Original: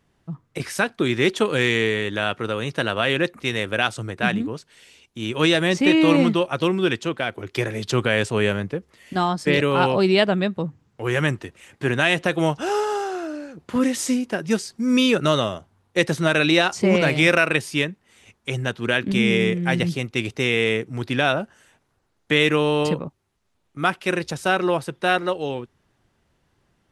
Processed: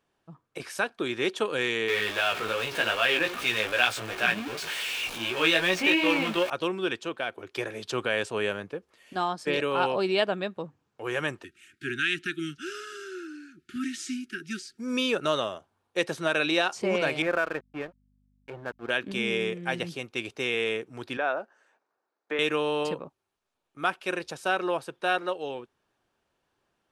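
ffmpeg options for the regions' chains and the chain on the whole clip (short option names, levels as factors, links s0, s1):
-filter_complex "[0:a]asettb=1/sr,asplit=3[s0][s1][s2];[s0]atrim=end=1.884[s3];[s1]atrim=start=1.88:end=6.5,asetpts=PTS-STARTPTS,afade=t=in:d=0.004:c=qsin,afade=t=out:st=4.616:d=0.004:c=qsin,aeval=exprs='val(0)+0.5*0.0794*sgn(val(0))':c=same,equalizer=f=2400:t=o:w=1.5:g=8.5,flanger=delay=16:depth=2.6:speed=2.6[s4];[s2]atrim=start=6.496[s5];[s3][s4]acrossfade=d=0.004:c1=hsin:c2=qsin[s6];[s6][s5]acrossfade=d=0.004:c1=qsin:c2=hsin,asettb=1/sr,asplit=3[s7][s8][s9];[s7]atrim=end=11.444[s10];[s8]atrim=start=11.44:end=14.78,asetpts=PTS-STARTPTS,afade=t=in:d=0.004:c=qsin,afade=t=out:st=3.336:d=0.004:c=qsin,asuperstop=centerf=710:order=20:qfactor=0.77,acrossover=split=8000[s11][s12];[s12]acompressor=threshold=0.00398:ratio=4:attack=1:release=60[s13];[s11][s13]amix=inputs=2:normalize=0[s14];[s9]atrim=start=14.776[s15];[s10][s14]acrossfade=d=0.004:c1=hsin:c2=qsin[s16];[s16][s15]acrossfade=d=0.004:c1=qsin:c2=hsin,asettb=1/sr,asplit=3[s17][s18][s19];[s17]atrim=end=17.224[s20];[s18]atrim=start=17.22:end=18.9,asetpts=PTS-STARTPTS,afade=t=in:d=0.004:c=qsin,afade=t=out:st=1.676:d=0.004:c=qsin,lowpass=f=1700:w=0.5412,lowpass=f=1700:w=1.3066,aeval=exprs='sgn(val(0))*max(abs(val(0))-0.02,0)':c=same,aeval=exprs='val(0)+0.00355*(sin(2*PI*50*n/s)+sin(2*PI*2*50*n/s)/2+sin(2*PI*3*50*n/s)/3+sin(2*PI*4*50*n/s)/4+sin(2*PI*5*50*n/s)/5)':c=same[s21];[s19]atrim=start=18.896[s22];[s20][s21]acrossfade=d=0.004:c1=hsin:c2=qsin[s23];[s23][s22]acrossfade=d=0.004:c1=qsin:c2=hsin,asettb=1/sr,asplit=3[s24][s25][s26];[s24]atrim=end=21.174[s27];[s25]atrim=start=21.17:end=22.39,asetpts=PTS-STARTPTS,afade=t=in:d=0.004:c=qsin,afade=t=out:st=1.216:d=0.004:c=qsin,acrossover=split=3000[s28][s29];[s29]acompressor=threshold=0.0126:ratio=4:attack=1:release=60[s30];[s28][s30]amix=inputs=2:normalize=0,highpass=330,lowpass=4500,equalizer=f=3100:w=2:g=-10.5[s31];[s26]atrim=start=22.386[s32];[s27][s31]acrossfade=d=0.004:c1=hsin:c2=qsin[s33];[s33][s32]acrossfade=d=0.004:c1=qsin:c2=hsin,bass=f=250:g=-13,treble=f=4000:g=-3,bandreject=f=2000:w=10,volume=0.531"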